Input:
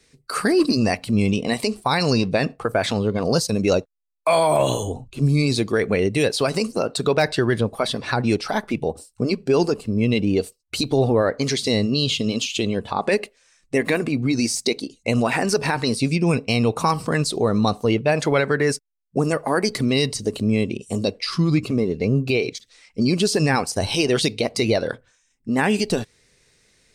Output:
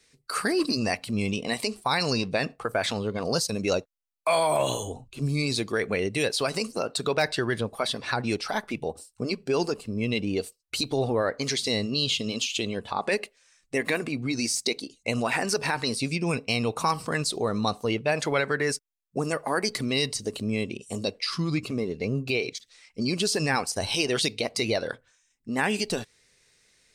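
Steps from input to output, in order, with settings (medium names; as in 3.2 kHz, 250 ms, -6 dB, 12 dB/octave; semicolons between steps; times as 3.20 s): tilt shelf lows -3.5 dB, about 640 Hz; trim -6 dB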